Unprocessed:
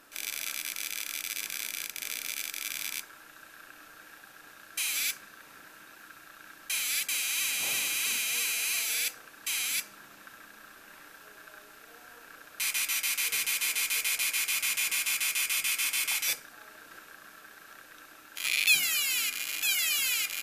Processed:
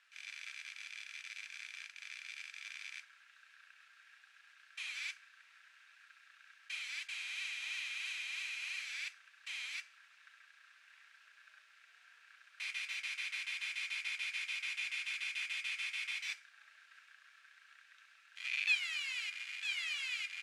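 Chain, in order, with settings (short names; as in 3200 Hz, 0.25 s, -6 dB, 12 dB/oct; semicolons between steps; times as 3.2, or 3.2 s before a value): CVSD 64 kbps; ladder band-pass 2600 Hz, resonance 35%; gain +1.5 dB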